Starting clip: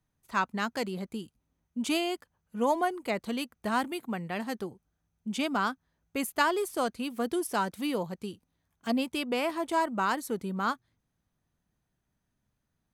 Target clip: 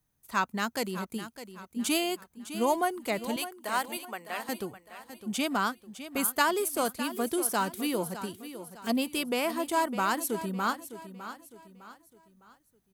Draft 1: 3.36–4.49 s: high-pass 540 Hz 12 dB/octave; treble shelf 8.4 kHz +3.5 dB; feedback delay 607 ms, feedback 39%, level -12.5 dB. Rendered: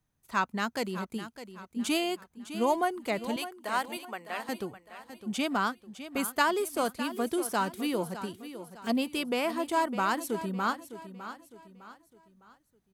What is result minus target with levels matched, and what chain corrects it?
8 kHz band -5.5 dB
3.36–4.49 s: high-pass 540 Hz 12 dB/octave; treble shelf 8.4 kHz +14.5 dB; feedback delay 607 ms, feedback 39%, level -12.5 dB

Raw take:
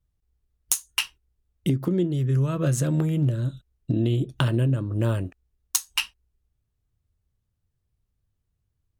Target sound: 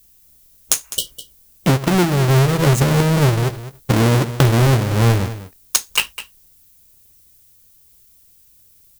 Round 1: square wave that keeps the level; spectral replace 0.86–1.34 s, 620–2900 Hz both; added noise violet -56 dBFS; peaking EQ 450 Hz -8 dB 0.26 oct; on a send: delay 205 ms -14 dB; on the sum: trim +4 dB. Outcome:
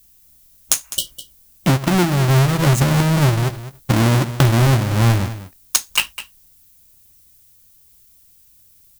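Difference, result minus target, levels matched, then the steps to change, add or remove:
500 Hz band -3.0 dB
change: peaking EQ 450 Hz +3 dB 0.26 oct

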